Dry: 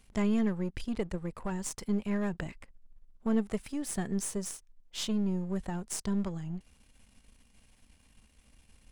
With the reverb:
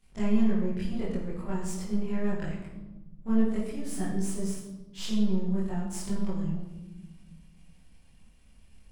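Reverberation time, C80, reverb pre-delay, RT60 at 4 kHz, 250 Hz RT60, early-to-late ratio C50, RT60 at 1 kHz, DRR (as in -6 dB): 1.1 s, 4.5 dB, 22 ms, 0.75 s, 1.8 s, 2.0 dB, 1.0 s, -11.0 dB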